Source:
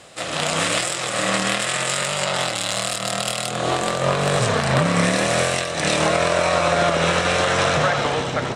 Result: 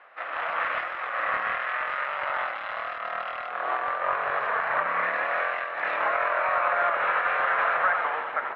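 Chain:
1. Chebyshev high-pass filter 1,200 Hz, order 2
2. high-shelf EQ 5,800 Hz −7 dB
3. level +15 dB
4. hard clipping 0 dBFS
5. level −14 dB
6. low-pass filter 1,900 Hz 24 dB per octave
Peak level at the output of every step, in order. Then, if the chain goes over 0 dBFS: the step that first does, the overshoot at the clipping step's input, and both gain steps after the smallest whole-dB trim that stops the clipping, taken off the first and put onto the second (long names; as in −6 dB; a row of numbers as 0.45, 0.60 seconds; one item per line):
−4.5, −6.5, +8.5, 0.0, −14.0, −13.0 dBFS
step 3, 8.5 dB
step 3 +6 dB, step 5 −5 dB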